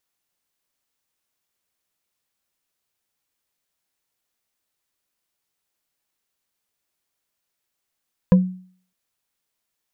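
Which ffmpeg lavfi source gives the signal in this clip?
-f lavfi -i "aevalsrc='0.473*pow(10,-3*t/0.49)*sin(2*PI*184*t)+0.188*pow(10,-3*t/0.145)*sin(2*PI*507.3*t)+0.075*pow(10,-3*t/0.065)*sin(2*PI*994.3*t)+0.0299*pow(10,-3*t/0.035)*sin(2*PI*1643.7*t)+0.0119*pow(10,-3*t/0.022)*sin(2*PI*2454.6*t)':d=0.61:s=44100"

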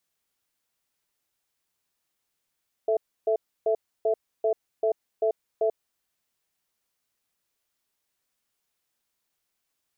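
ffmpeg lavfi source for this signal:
-f lavfi -i "aevalsrc='0.0708*(sin(2*PI*440*t)+sin(2*PI*662*t))*clip(min(mod(t,0.39),0.09-mod(t,0.39))/0.005,0,1)':d=3.08:s=44100"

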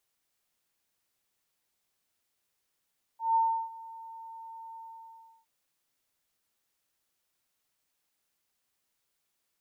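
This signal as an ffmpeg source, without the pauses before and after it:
-f lavfi -i "aevalsrc='0.0891*sin(2*PI*905*t)':d=2.267:s=44100,afade=t=in:d=0.162,afade=t=out:st=0.162:d=0.339:silence=0.0891,afade=t=out:st=1.57:d=0.697"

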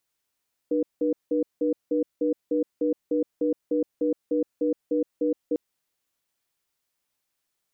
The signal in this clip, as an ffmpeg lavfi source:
-f lavfi -i "aevalsrc='0.0668*(sin(2*PI*301*t)+sin(2*PI*484*t))*clip(min(mod(t,0.3),0.12-mod(t,0.3))/0.005,0,1)':d=4.85:s=44100"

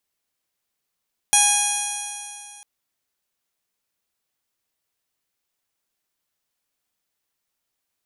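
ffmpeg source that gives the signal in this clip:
-f lavfi -i "aevalsrc='0.0891*pow(10,-3*t/2.55)*sin(2*PI*821.27*t)+0.0355*pow(10,-3*t/2.55)*sin(2*PI*1644.13*t)+0.0708*pow(10,-3*t/2.55)*sin(2*PI*2470.19*t)+0.0708*pow(10,-3*t/2.55)*sin(2*PI*3301.03*t)+0.0299*pow(10,-3*t/2.55)*sin(2*PI*4138.22*t)+0.0126*pow(10,-3*t/2.55)*sin(2*PI*4983.3*t)+0.1*pow(10,-3*t/2.55)*sin(2*PI*5837.8*t)+0.0944*pow(10,-3*t/2.55)*sin(2*PI*6703.22*t)+0.0178*pow(10,-3*t/2.55)*sin(2*PI*7581.02*t)+0.0631*pow(10,-3*t/2.55)*sin(2*PI*8472.62*t)+0.141*pow(10,-3*t/2.55)*sin(2*PI*9379.42*t)+0.0794*pow(10,-3*t/2.55)*sin(2*PI*10302.76*t)+0.0422*pow(10,-3*t/2.55)*sin(2*PI*11243.94*t)':d=1.3:s=44100"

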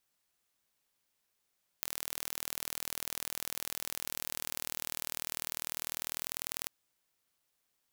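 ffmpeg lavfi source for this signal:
-f lavfi -i "aevalsrc='0.447*eq(mod(n,1100),0)*(0.5+0.5*eq(mod(n,2200),0))':d=4.85:s=44100"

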